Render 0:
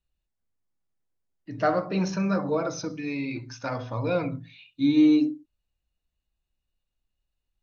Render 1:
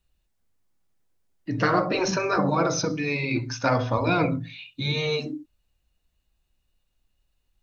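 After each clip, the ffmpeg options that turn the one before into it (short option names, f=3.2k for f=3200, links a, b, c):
-af "afftfilt=real='re*lt(hypot(re,im),0.282)':imag='im*lt(hypot(re,im),0.282)':win_size=1024:overlap=0.75,volume=9dB"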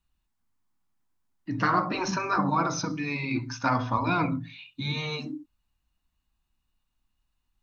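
-af "equalizer=f=250:t=o:w=1:g=6,equalizer=f=500:t=o:w=1:g=-10,equalizer=f=1k:t=o:w=1:g=9,volume=-5dB"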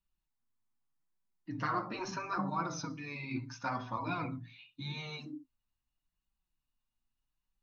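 -af "flanger=delay=5.1:depth=3.7:regen=31:speed=0.79:shape=sinusoidal,volume=-6.5dB"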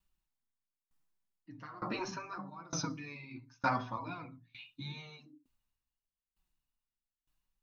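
-af "aeval=exprs='val(0)*pow(10,-25*if(lt(mod(1.1*n/s,1),2*abs(1.1)/1000),1-mod(1.1*n/s,1)/(2*abs(1.1)/1000),(mod(1.1*n/s,1)-2*abs(1.1)/1000)/(1-2*abs(1.1)/1000))/20)':c=same,volume=6.5dB"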